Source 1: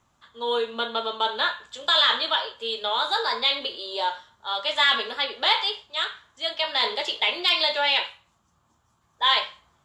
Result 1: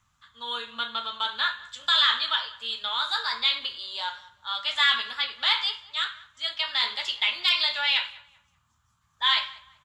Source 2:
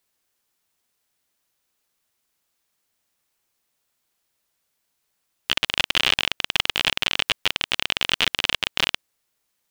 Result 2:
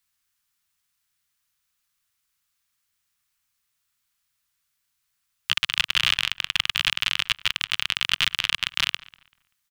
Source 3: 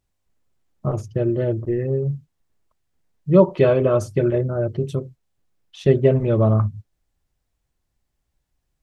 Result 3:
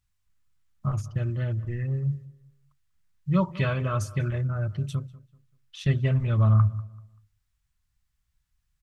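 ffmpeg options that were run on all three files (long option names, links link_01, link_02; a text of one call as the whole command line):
ffmpeg -i in.wav -filter_complex "[0:a]firequalizer=gain_entry='entry(100,0);entry(380,-21);entry(1200,-1)':delay=0.05:min_phase=1,asplit=2[link_01][link_02];[link_02]adelay=193,lowpass=frequency=2600:poles=1,volume=-19.5dB,asplit=2[link_03][link_04];[link_04]adelay=193,lowpass=frequency=2600:poles=1,volume=0.31,asplit=2[link_05][link_06];[link_06]adelay=193,lowpass=frequency=2600:poles=1,volume=0.31[link_07];[link_03][link_05][link_07]amix=inputs=3:normalize=0[link_08];[link_01][link_08]amix=inputs=2:normalize=0" out.wav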